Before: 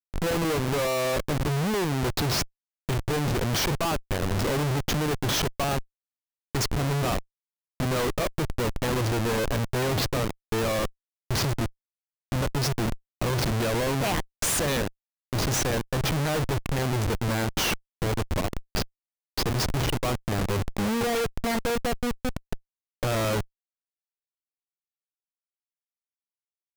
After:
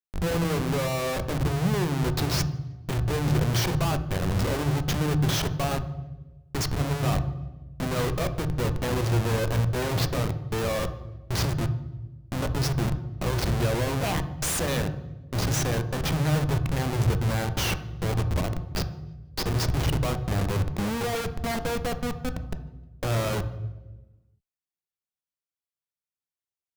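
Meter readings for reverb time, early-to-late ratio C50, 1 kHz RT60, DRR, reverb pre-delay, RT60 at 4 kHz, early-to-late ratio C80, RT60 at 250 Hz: 1.1 s, 12.0 dB, 0.95 s, 9.0 dB, 3 ms, 0.90 s, 15.0 dB, 1.5 s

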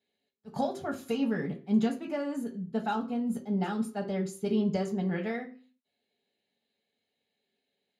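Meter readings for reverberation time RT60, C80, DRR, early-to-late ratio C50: 0.45 s, 16.0 dB, 0.0 dB, 12.0 dB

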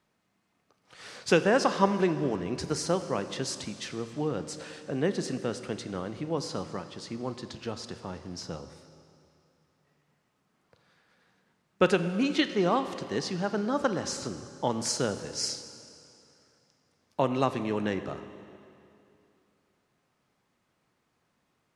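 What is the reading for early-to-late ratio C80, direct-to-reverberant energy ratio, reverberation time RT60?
11.5 dB, 10.0 dB, 2.6 s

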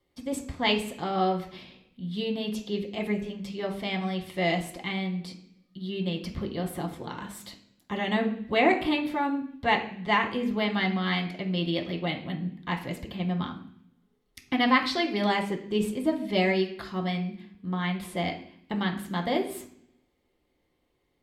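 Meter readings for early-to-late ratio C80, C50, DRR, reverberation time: 13.5 dB, 10.0 dB, 0.5 dB, 0.60 s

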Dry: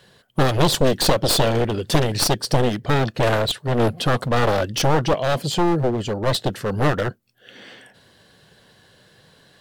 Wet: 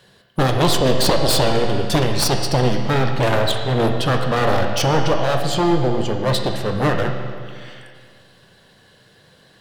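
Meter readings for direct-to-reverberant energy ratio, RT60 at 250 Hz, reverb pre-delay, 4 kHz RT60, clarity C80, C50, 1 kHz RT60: 3.0 dB, 2.0 s, 15 ms, 1.9 s, 5.5 dB, 4.5 dB, 2.0 s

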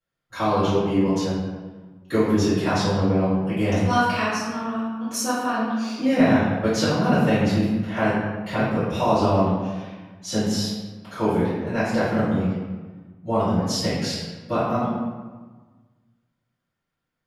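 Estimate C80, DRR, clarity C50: 1.5 dB, -18.5 dB, -1.5 dB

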